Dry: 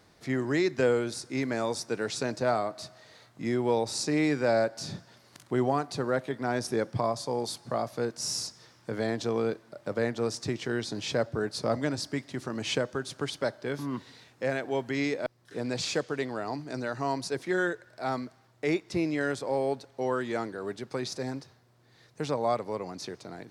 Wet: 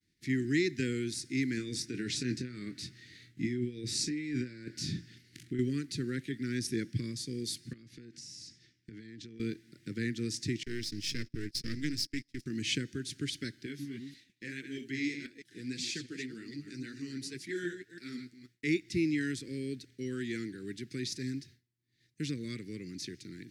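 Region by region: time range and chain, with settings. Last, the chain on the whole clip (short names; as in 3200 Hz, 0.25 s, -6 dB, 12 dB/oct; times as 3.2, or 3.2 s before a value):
1.57–5.59 high shelf 4800 Hz -8 dB + negative-ratio compressor -32 dBFS + doubler 24 ms -9 dB
7.73–9.4 compressor 20:1, threshold -39 dBFS + air absorption 67 m
10.63–12.46 half-wave gain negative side -12 dB + gate -42 dBFS, range -22 dB + bell 5200 Hz +10.5 dB 0.27 oct
13.66–18.64 reverse delay 0.16 s, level -8 dB + low shelf 100 Hz -11 dB + flange 1.8 Hz, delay 2.5 ms, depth 8.2 ms, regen +32%
whole clip: expander -50 dBFS; Chebyshev band-stop 330–1900 Hz, order 3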